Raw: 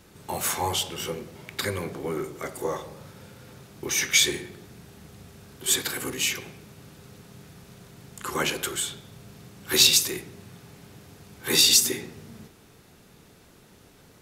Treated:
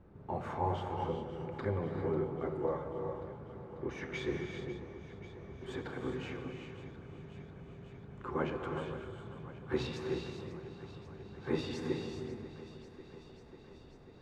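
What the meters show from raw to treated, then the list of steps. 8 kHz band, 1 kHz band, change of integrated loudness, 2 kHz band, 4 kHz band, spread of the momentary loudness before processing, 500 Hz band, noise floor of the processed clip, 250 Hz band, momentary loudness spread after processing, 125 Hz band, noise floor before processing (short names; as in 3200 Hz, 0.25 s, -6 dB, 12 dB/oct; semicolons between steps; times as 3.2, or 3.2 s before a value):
-38.0 dB, -5.5 dB, -16.0 dB, -16.0 dB, -27.0 dB, 20 LU, -3.0 dB, -55 dBFS, -3.0 dB, 15 LU, -0.5 dB, -54 dBFS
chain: LPF 1000 Hz 12 dB/oct; low shelf 94 Hz +7 dB; on a send: thinning echo 0.543 s, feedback 74%, high-pass 160 Hz, level -14 dB; on the sum: non-linear reverb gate 0.43 s rising, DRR 4 dB; gain -5 dB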